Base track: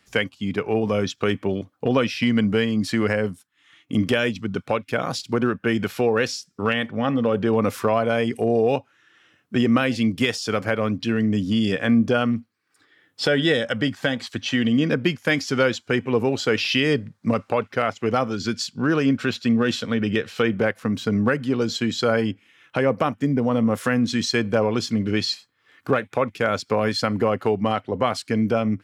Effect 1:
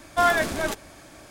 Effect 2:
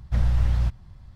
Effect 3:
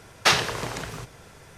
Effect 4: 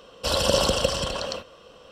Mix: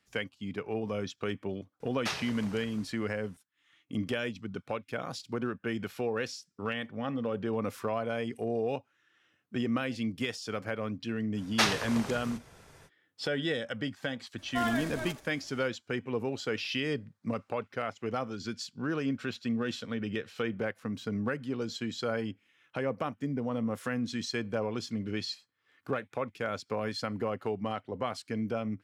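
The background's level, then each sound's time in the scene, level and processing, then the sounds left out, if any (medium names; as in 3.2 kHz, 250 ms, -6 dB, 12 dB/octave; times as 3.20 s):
base track -12 dB
1.80 s: add 3 -16 dB
11.33 s: add 3 -7 dB, fades 0.05 s
14.38 s: add 1 -12 dB + delay 81 ms -11 dB
not used: 2, 4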